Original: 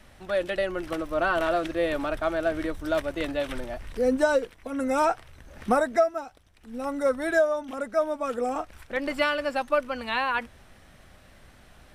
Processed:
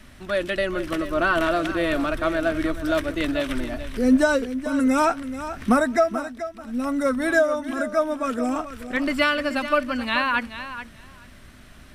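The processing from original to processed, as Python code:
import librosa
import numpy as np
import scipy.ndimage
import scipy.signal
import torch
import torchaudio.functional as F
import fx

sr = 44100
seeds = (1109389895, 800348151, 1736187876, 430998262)

y = fx.graphic_eq_31(x, sr, hz=(250, 500, 800), db=(6, -8, -9))
y = fx.echo_feedback(y, sr, ms=431, feedback_pct=15, wet_db=-12)
y = y * librosa.db_to_amplitude(5.5)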